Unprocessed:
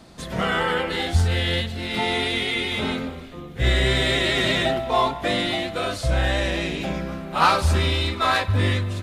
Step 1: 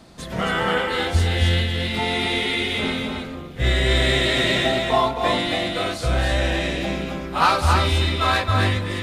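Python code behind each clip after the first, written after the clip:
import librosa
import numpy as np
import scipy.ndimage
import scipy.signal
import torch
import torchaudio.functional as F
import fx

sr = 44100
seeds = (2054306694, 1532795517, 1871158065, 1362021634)

y = x + 10.0 ** (-4.0 / 20.0) * np.pad(x, (int(269 * sr / 1000.0), 0))[:len(x)]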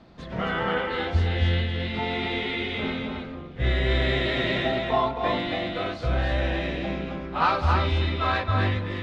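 y = fx.air_absorb(x, sr, metres=220.0)
y = F.gain(torch.from_numpy(y), -3.5).numpy()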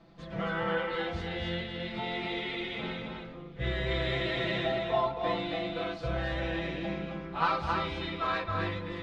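y = x + 0.77 * np.pad(x, (int(6.0 * sr / 1000.0), 0))[:len(x)]
y = F.gain(torch.from_numpy(y), -8.0).numpy()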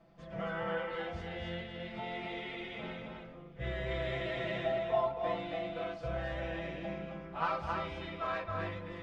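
y = fx.graphic_eq_31(x, sr, hz=(315, 630, 4000), db=(-3, 6, -9))
y = F.gain(torch.from_numpy(y), -6.0).numpy()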